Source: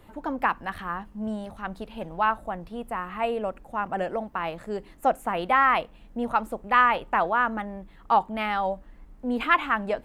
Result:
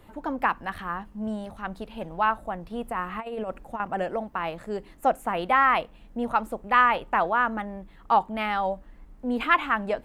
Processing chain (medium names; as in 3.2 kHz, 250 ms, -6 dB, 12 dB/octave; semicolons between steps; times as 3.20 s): 2.70–3.80 s: compressor with a negative ratio -30 dBFS, ratio -0.5